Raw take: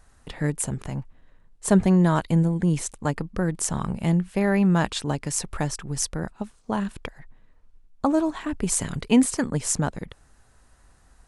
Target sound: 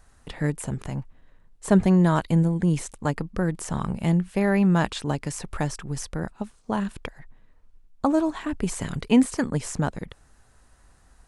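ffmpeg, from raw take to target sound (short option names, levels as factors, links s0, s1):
-filter_complex "[0:a]acrossover=split=3000[s0][s1];[s1]acompressor=threshold=0.0251:ratio=4:attack=1:release=60[s2];[s0][s2]amix=inputs=2:normalize=0"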